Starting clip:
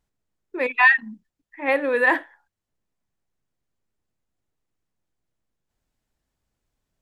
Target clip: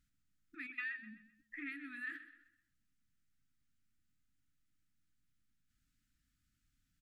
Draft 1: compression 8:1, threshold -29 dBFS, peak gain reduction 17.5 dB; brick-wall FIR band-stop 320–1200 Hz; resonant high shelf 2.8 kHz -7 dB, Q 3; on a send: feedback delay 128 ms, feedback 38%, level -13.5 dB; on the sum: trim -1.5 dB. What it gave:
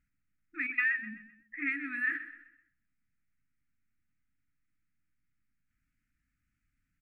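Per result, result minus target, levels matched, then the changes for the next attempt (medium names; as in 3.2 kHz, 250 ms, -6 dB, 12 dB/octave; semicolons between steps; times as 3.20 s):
4 kHz band -11.5 dB; compression: peak gain reduction -9 dB
remove: resonant high shelf 2.8 kHz -7 dB, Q 3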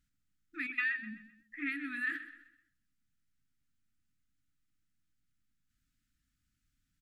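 compression: peak gain reduction -9 dB
change: compression 8:1, threshold -39 dBFS, peak gain reduction 26.5 dB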